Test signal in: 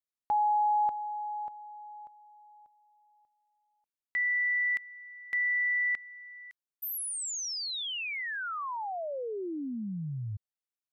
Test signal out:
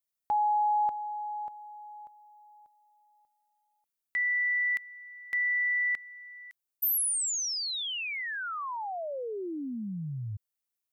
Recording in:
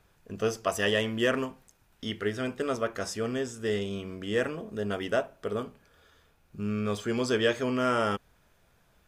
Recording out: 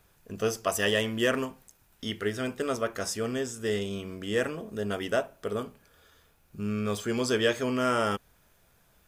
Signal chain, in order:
high-shelf EQ 8,200 Hz +11 dB

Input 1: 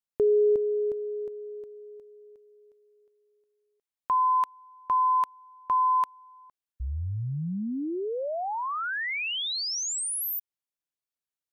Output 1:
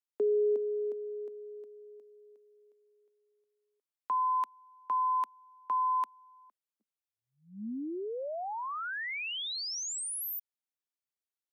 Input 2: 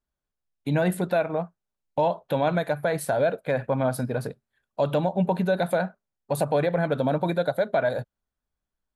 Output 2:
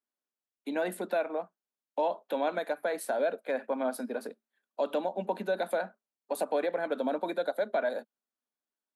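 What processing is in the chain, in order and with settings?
Butterworth high-pass 210 Hz 72 dB per octave
level −6 dB

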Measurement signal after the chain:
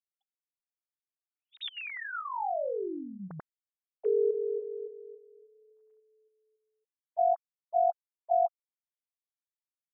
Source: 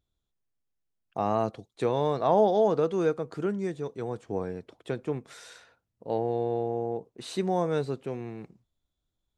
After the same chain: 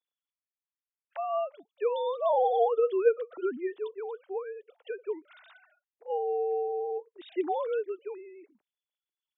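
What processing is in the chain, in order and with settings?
three sine waves on the formant tracks
low-shelf EQ 260 Hz −9 dB

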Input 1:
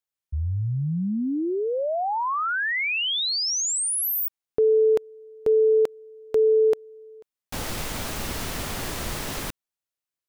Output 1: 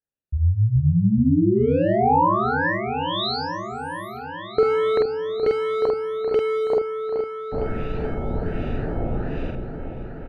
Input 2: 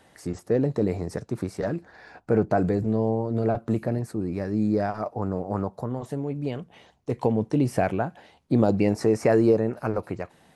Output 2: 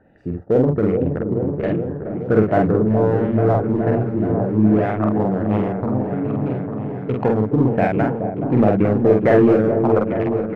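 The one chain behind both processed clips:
adaptive Wiener filter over 41 samples
treble cut that deepens with the level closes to 2,000 Hz, closed at −20.5 dBFS
high-shelf EQ 8,800 Hz +11.5 dB
auto-filter low-pass sine 1.3 Hz 840–2,900 Hz
in parallel at −7.5 dB: hard clipping −20 dBFS
on the sum: double-tracking delay 47 ms −2.5 dB
on a send: echo whose low-pass opens from repeat to repeat 424 ms, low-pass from 750 Hz, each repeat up 1 octave, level −6 dB
on the sum: level +2 dB

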